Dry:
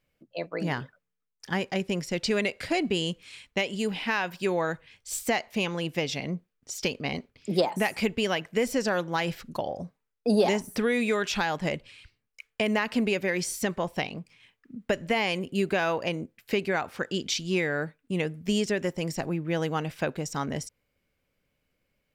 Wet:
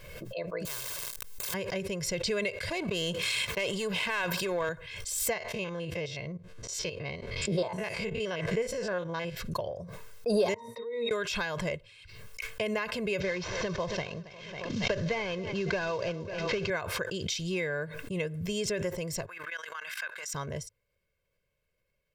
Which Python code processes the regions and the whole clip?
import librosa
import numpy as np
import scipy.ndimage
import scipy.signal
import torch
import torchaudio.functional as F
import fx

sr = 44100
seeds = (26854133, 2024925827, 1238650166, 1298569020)

y = fx.chain(x, sr, fx.zero_step(step_db=-38.0),
    fx.high_shelf(hz=3500.0, db=9.5),
    fx.spectral_comp(ratio=10.0), at=(0.65, 1.54))
y = fx.chain(y, sr, fx.highpass(hz=140.0, slope=12),
    fx.power_curve(exponent=1.4),
    fx.env_flatten(amount_pct=100), at=(2.7, 4.69))
y = fx.chain(y, sr, fx.spec_steps(hold_ms=50),
    fx.air_absorb(metres=55.0), at=(5.33, 9.37))
y = fx.chain(y, sr, fx.highpass(hz=570.0, slope=12),
    fx.octave_resonator(note='A#', decay_s=0.19), at=(10.54, 11.11))
y = fx.chain(y, sr, fx.cvsd(bps=32000),
    fx.echo_feedback(ms=274, feedback_pct=44, wet_db=-21.5),
    fx.band_squash(depth_pct=70), at=(13.2, 16.7))
y = fx.chain(y, sr, fx.highpass_res(hz=1500.0, q=2.6),
    fx.level_steps(step_db=16), at=(19.26, 20.34))
y = y + 0.75 * np.pad(y, (int(1.9 * sr / 1000.0), 0))[:len(y)]
y = fx.dynamic_eq(y, sr, hz=100.0, q=2.0, threshold_db=-53.0, ratio=4.0, max_db=7)
y = fx.pre_swell(y, sr, db_per_s=40.0)
y = F.gain(torch.from_numpy(y), -7.0).numpy()